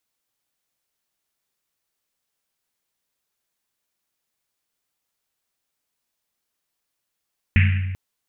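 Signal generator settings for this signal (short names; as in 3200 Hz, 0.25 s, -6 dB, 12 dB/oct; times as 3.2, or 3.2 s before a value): Risset drum length 0.39 s, pitch 93 Hz, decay 1.66 s, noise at 2200 Hz, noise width 1100 Hz, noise 20%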